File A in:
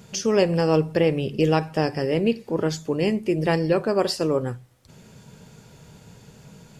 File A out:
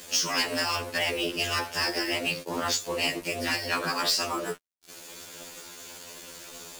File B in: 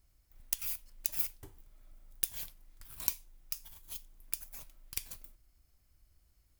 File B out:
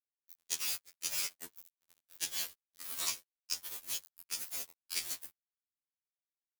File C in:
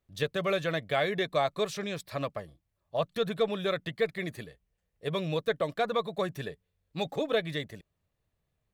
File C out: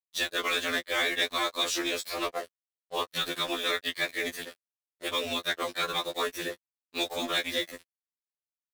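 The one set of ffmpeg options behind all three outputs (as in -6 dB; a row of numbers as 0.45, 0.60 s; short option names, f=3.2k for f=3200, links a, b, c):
-filter_complex "[0:a]highpass=f=300:w=0.5412,highpass=f=300:w=1.3066,afftfilt=real='re*lt(hypot(re,im),0.251)':imag='im*lt(hypot(re,im),0.251)':win_size=1024:overlap=0.75,aeval=exprs='val(0)*sin(2*PI*65*n/s)':c=same,acrossover=split=7800[a][b];[b]acompressor=threshold=-54dB:ratio=4:attack=1:release=60[c];[a][c]amix=inputs=2:normalize=0,highshelf=f=2.7k:g=9,asplit=2[d][e];[e]acompressor=threshold=-42dB:ratio=16,volume=-3dB[f];[d][f]amix=inputs=2:normalize=0,acrusher=bits=6:mix=0:aa=0.5,equalizer=f=800:w=5:g=-3.5,volume=24.5dB,asoftclip=hard,volume=-24.5dB,afftfilt=real='re*2*eq(mod(b,4),0)':imag='im*2*eq(mod(b,4),0)':win_size=2048:overlap=0.75,volume=7.5dB"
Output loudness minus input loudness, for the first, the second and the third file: -4.5, 0.0, +1.5 LU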